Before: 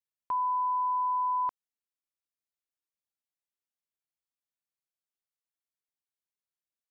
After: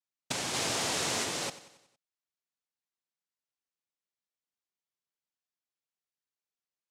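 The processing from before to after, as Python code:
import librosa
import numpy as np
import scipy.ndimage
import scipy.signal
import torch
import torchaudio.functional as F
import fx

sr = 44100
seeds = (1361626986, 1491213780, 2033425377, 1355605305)

y = fx.env_lowpass_down(x, sr, base_hz=740.0, full_db=-30.5)
y = fx.noise_vocoder(y, sr, seeds[0], bands=2)
y = fx.echo_feedback(y, sr, ms=92, feedback_pct=52, wet_db=-15.5)
y = fx.env_flatten(y, sr, amount_pct=100, at=(0.53, 1.23), fade=0.02)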